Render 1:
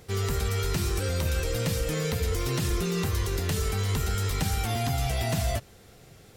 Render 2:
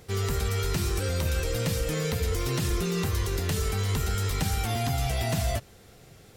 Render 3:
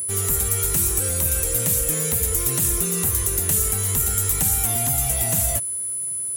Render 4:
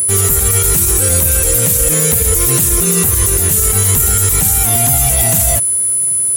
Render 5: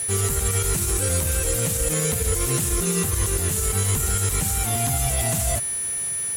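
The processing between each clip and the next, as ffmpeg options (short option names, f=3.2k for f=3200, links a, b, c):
-af anull
-af "aeval=exprs='val(0)+0.00708*sin(2*PI*10000*n/s)':c=same,aexciter=amount=11.1:drive=1.1:freq=6.9k"
-af "alimiter=level_in=14dB:limit=-1dB:release=50:level=0:latency=1,volume=-1dB"
-af "adynamicsmooth=sensitivity=5:basefreq=5.2k,volume=-7.5dB"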